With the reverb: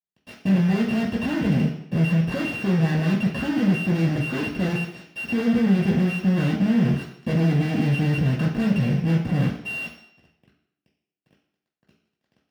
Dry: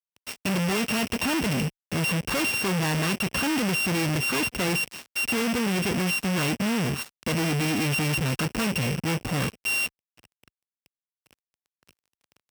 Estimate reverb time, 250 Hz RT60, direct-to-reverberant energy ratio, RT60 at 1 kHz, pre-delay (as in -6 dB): 0.70 s, 0.75 s, -2.5 dB, 0.70 s, 3 ms